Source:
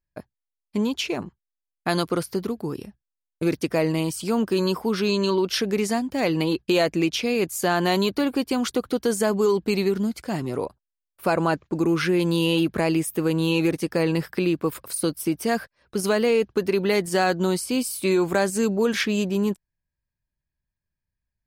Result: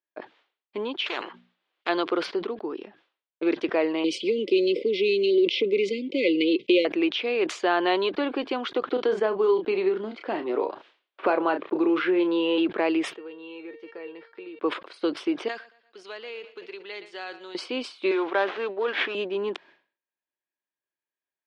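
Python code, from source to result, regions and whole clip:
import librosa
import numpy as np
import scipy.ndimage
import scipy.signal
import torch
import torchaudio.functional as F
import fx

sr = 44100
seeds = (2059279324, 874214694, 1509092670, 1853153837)

y = fx.chain(x, sr, fx.hum_notches(base_hz=60, count=4),
    fx.spectral_comp(ratio=4.0), at=(1.06, 1.89))
y = fx.chain(y, sr, fx.leveller(passes=1),
    fx.brickwall_bandstop(low_hz=570.0, high_hz=2000.0),
    fx.band_squash(depth_pct=70), at=(4.04, 6.85))
y = fx.chain(y, sr, fx.high_shelf(hz=2600.0, db=-7.0),
    fx.doubler(ms=32.0, db=-10),
    fx.band_squash(depth_pct=70), at=(8.91, 12.58))
y = fx.chain(y, sr, fx.high_shelf(hz=6300.0, db=-10.5),
    fx.comb_fb(f0_hz=460.0, decay_s=0.29, harmonics='all', damping=0.0, mix_pct=90),
    fx.band_squash(depth_pct=40), at=(13.13, 14.59))
y = fx.chain(y, sr, fx.pre_emphasis(coefficient=0.9),
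    fx.echo_feedback(ms=117, feedback_pct=58, wet_db=-18.0), at=(15.48, 17.55))
y = fx.chain(y, sr, fx.weighting(curve='A'),
    fx.running_max(window=5), at=(18.11, 19.15))
y = scipy.signal.sosfilt(scipy.signal.ellip(3, 1.0, 60, [330.0, 3400.0], 'bandpass', fs=sr, output='sos'), y)
y = fx.sustainer(y, sr, db_per_s=140.0)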